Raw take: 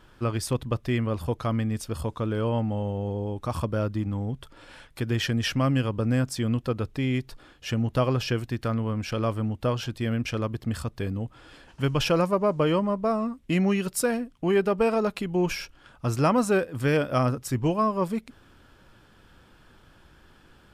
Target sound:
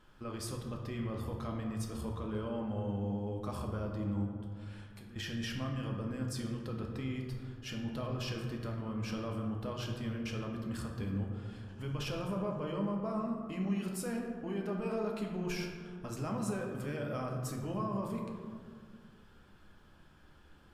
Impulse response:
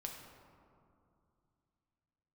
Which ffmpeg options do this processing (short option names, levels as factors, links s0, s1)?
-filter_complex "[0:a]alimiter=limit=0.0708:level=0:latency=1:release=20,asettb=1/sr,asplit=3[s0][s1][s2];[s0]atrim=end=4.254[s3];[s1]atrim=start=4.25:end=5.16,asetpts=PTS-STARTPTS,afade=t=in:d=0.004:c=qsin,afade=t=out:st=0.906:d=0.004:c=qsin,acompressor=threshold=0.00501:ratio=4[s4];[s2]atrim=start=5.156[s5];[s3][s4]acrossfade=d=0.004:c1=hsin:c2=qsin[s6];[s6][s5]acrossfade=d=0.004:c1=qsin:c2=hsin[s7];[1:a]atrim=start_sample=2205,asetrate=57330,aresample=44100[s8];[s7][s8]afir=irnorm=-1:irlink=0,volume=0.75"